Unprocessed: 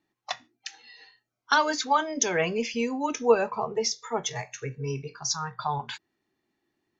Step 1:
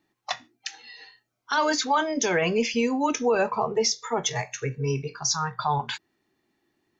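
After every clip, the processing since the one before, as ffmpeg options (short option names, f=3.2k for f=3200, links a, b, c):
-af "alimiter=limit=-19dB:level=0:latency=1:release=18,volume=5dB"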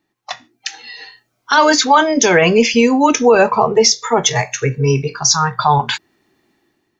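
-af "dynaudnorm=f=170:g=7:m=11dB,volume=2dB"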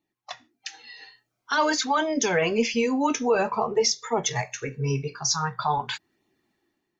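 -af "flanger=delay=0.3:depth=7.2:regen=-46:speed=0.48:shape=sinusoidal,volume=-7.5dB"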